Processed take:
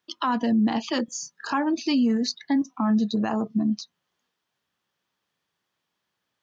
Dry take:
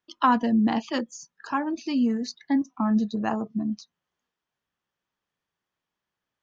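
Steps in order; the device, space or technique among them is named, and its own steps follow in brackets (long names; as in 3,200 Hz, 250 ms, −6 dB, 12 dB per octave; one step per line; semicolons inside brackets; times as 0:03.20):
broadcast voice chain (high-pass filter 87 Hz; de-essing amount 65%; downward compressor, threshold −22 dBFS, peak gain reduction 7 dB; parametric band 4,100 Hz +4.5 dB 1 octave; brickwall limiter −20.5 dBFS, peak gain reduction 8 dB)
0:01.05–0:01.53: double-tracking delay 30 ms −3 dB
level +5 dB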